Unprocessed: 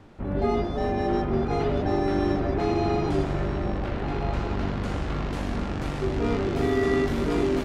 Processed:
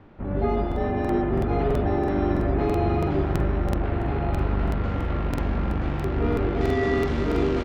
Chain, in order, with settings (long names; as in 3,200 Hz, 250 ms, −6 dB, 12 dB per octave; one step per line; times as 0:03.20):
low-pass filter 2,700 Hz 12 dB per octave, from 0:06.61 5,100 Hz
slap from a distant wall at 210 metres, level −10 dB
spring reverb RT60 2.9 s, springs 40 ms, chirp 50 ms, DRR 6.5 dB
regular buffer underruns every 0.33 s, samples 2,048, repeat, from 0:00.67